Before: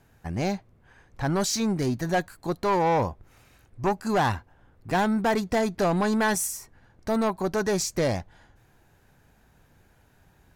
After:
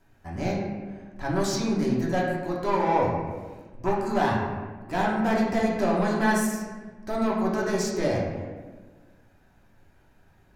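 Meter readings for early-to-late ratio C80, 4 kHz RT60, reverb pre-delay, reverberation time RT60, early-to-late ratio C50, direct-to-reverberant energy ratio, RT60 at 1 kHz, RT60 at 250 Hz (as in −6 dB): 3.5 dB, 0.85 s, 3 ms, 1.4 s, 1.5 dB, −5.5 dB, 1.2 s, 1.8 s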